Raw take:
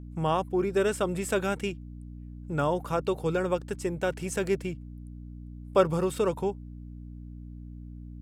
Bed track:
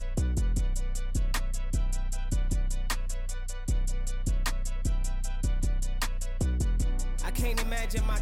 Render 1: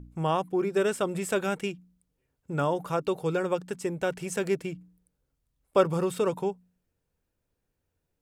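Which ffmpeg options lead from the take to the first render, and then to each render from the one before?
ffmpeg -i in.wav -af "bandreject=frequency=60:width_type=h:width=4,bandreject=frequency=120:width_type=h:width=4,bandreject=frequency=180:width_type=h:width=4,bandreject=frequency=240:width_type=h:width=4,bandreject=frequency=300:width_type=h:width=4" out.wav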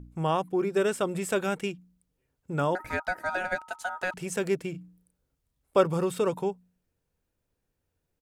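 ffmpeg -i in.wav -filter_complex "[0:a]asettb=1/sr,asplit=3[link_01][link_02][link_03];[link_01]atrim=end=2.754[link_04];[link_02]atrim=start=2.75:end=4.14,asetpts=PTS-STARTPTS,afade=type=in:duration=0.004:curve=qsin,afade=type=out:start_time=1.386:duration=0.004:curve=qsin,aeval=exprs='val(0)*sin(2*PI*1100*n/s)':channel_layout=same[link_05];[link_03]atrim=start=4.136[link_06];[link_04][link_05]acrossfade=duration=0.004:curve1=hsin:curve2=qsin[link_07];[link_07][link_06]acrossfade=duration=0.004:curve1=qsin:curve2=hsin,asplit=3[link_08][link_09][link_10];[link_08]afade=type=out:start_time=4.73:duration=0.02[link_11];[link_09]asplit=2[link_12][link_13];[link_13]adelay=33,volume=-6dB[link_14];[link_12][link_14]amix=inputs=2:normalize=0,afade=type=in:start_time=4.73:duration=0.02,afade=type=out:start_time=5.78:duration=0.02[link_15];[link_10]afade=type=in:start_time=5.78:duration=0.02[link_16];[link_11][link_15][link_16]amix=inputs=3:normalize=0" out.wav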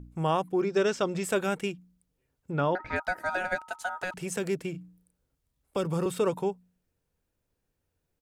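ffmpeg -i in.wav -filter_complex "[0:a]asettb=1/sr,asplit=3[link_01][link_02][link_03];[link_01]atrim=end=0.614[link_04];[link_02]atrim=start=0.61:end=1.24,asetpts=PTS-STARTPTS,afade=type=in:duration=0.004:curve=qsin,afade=type=out:start_time=0.626:duration=0.004:curve=qsin,highshelf=frequency=7700:width_type=q:width=3:gain=-11[link_05];[link_03]atrim=start=1.236[link_06];[link_04][link_05]acrossfade=duration=0.004:curve1=hsin:curve2=qsin[link_07];[link_07][link_06]acrossfade=duration=0.004:curve1=qsin:curve2=hsin,asettb=1/sr,asplit=3[link_08][link_09][link_10];[link_08]atrim=end=2.514[link_11];[link_09]atrim=start=2.51:end=2.96,asetpts=PTS-STARTPTS,afade=type=in:duration=0.004:curve=qsin,afade=type=out:start_time=0.446:duration=0.004:curve=qsin,lowpass=frequency=4700:width=0.5412,lowpass=frequency=4700:width=1.3066[link_12];[link_10]atrim=start=2.956[link_13];[link_11][link_12]acrossfade=duration=0.004:curve1=hsin:curve2=qsin[link_14];[link_14][link_13]acrossfade=duration=0.004:curve1=qsin:curve2=hsin,asettb=1/sr,asplit=3[link_15][link_16][link_17];[link_15]atrim=end=4.034[link_18];[link_16]atrim=start=4.03:end=6.06,asetpts=PTS-STARTPTS,afade=type=in:duration=0.004:curve=qsin,afade=type=out:start_time=2.026:duration=0.004:curve=qsin,acrossover=split=300|3000[link_19][link_20][link_21];[link_20]acompressor=threshold=-29dB:ratio=6:attack=3.2:release=140:knee=2.83:detection=peak[link_22];[link_19][link_22][link_21]amix=inputs=3:normalize=0[link_23];[link_17]atrim=start=6.056[link_24];[link_18][link_23]acrossfade=duration=0.004:curve1=hsin:curve2=qsin[link_25];[link_25][link_24]acrossfade=duration=0.004:curve1=qsin:curve2=hsin" out.wav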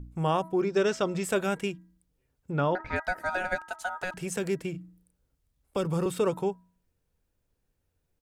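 ffmpeg -i in.wav -af "lowshelf=frequency=76:gain=7,bandreject=frequency=324:width_type=h:width=4,bandreject=frequency=648:width_type=h:width=4,bandreject=frequency=972:width_type=h:width=4,bandreject=frequency=1296:width_type=h:width=4,bandreject=frequency=1620:width_type=h:width=4,bandreject=frequency=1944:width_type=h:width=4" out.wav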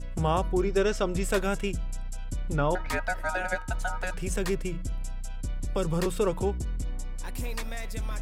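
ffmpeg -i in.wav -i bed.wav -filter_complex "[1:a]volume=-4.5dB[link_01];[0:a][link_01]amix=inputs=2:normalize=0" out.wav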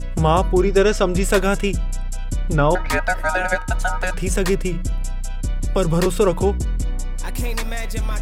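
ffmpeg -i in.wav -af "volume=9.5dB" out.wav

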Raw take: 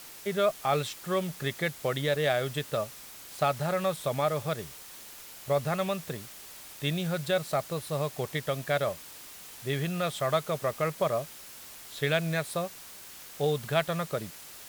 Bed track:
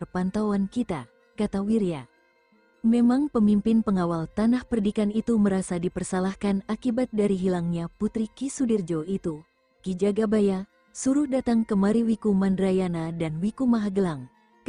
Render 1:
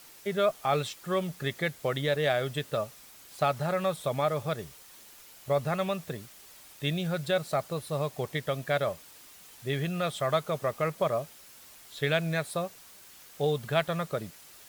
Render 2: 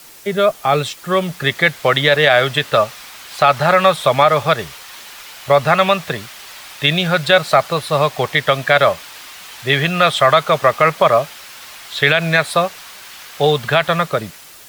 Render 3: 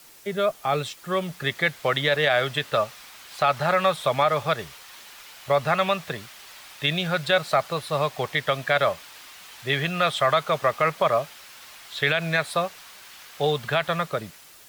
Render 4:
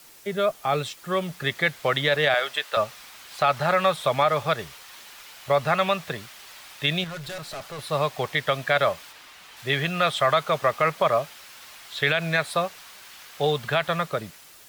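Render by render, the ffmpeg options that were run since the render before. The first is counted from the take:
ffmpeg -i in.wav -af "afftdn=noise_reduction=6:noise_floor=-47" out.wav
ffmpeg -i in.wav -filter_complex "[0:a]acrossover=split=330|710|4800[link_01][link_02][link_03][link_04];[link_03]dynaudnorm=framelen=980:gausssize=3:maxgain=11dB[link_05];[link_01][link_02][link_05][link_04]amix=inputs=4:normalize=0,alimiter=level_in=11dB:limit=-1dB:release=50:level=0:latency=1" out.wav
ffmpeg -i in.wav -af "volume=-9dB" out.wav
ffmpeg -i in.wav -filter_complex "[0:a]asettb=1/sr,asplit=3[link_01][link_02][link_03];[link_01]atrim=end=2.344[link_04];[link_02]atrim=start=2.34:end=2.77,asetpts=PTS-STARTPTS,afade=type=in:duration=0.004:curve=qsin,afade=type=out:start_time=0.426:duration=0.004:curve=qsin,highpass=590[link_05];[link_03]atrim=start=2.766[link_06];[link_04][link_05]acrossfade=duration=0.004:curve1=hsin:curve2=qsin[link_07];[link_07][link_06]acrossfade=duration=0.004:curve1=qsin:curve2=hsin,asettb=1/sr,asplit=3[link_08][link_09][link_10];[link_08]atrim=end=7.044[link_11];[link_09]atrim=start=7.04:end=7.79,asetpts=PTS-STARTPTS,afade=type=in:duration=0.004:curve=qsin,afade=type=out:start_time=0.746:duration=0.004:curve=qsin,aeval=exprs='(tanh(44.7*val(0)+0.15)-tanh(0.15))/44.7':channel_layout=same[link_12];[link_10]atrim=start=7.786[link_13];[link_11][link_12]acrossfade=duration=0.004:curve1=hsin:curve2=qsin[link_14];[link_14][link_13]acrossfade=duration=0.004:curve1=qsin:curve2=hsin,asettb=1/sr,asplit=3[link_15][link_16][link_17];[link_15]atrim=end=9.124[link_18];[link_16]atrim=start=9.12:end=9.57,asetpts=PTS-STARTPTS,afade=type=in:duration=0.004:curve=qsin,afade=type=out:start_time=0.446:duration=0.004:curve=qsin,highshelf=frequency=5000:gain=-7.5[link_19];[link_17]atrim=start=9.566[link_20];[link_18][link_19]acrossfade=duration=0.004:curve1=hsin:curve2=qsin[link_21];[link_21][link_20]acrossfade=duration=0.004:curve1=qsin:curve2=hsin" out.wav

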